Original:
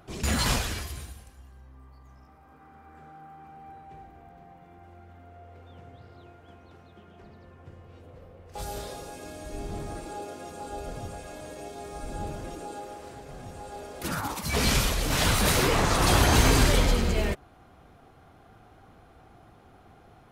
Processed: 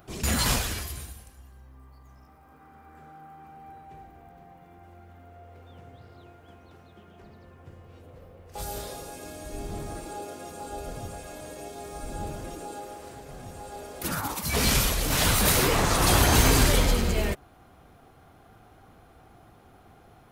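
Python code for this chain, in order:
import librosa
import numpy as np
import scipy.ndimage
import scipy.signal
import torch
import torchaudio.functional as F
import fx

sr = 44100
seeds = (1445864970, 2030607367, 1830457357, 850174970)

y = fx.high_shelf(x, sr, hz=11000.0, db=11.5)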